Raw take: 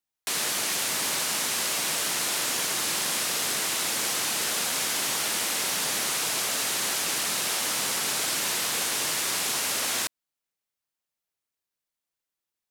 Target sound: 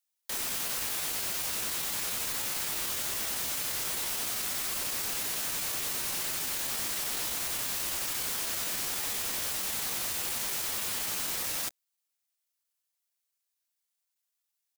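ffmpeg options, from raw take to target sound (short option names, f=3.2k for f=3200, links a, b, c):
-af "highpass=f=530:w=0.5412,highpass=f=530:w=1.3066,highshelf=f=3.1k:g=10.5,aeval=exprs='0.0668*(abs(mod(val(0)/0.0668+3,4)-2)-1)':c=same,atempo=0.86,volume=-4.5dB"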